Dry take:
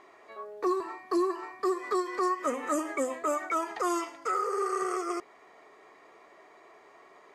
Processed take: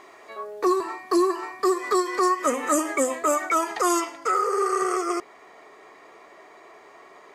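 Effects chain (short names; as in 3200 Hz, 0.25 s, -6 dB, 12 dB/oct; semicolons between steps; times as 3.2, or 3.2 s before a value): high shelf 4300 Hz +8 dB, from 4 s +2.5 dB; gain +6.5 dB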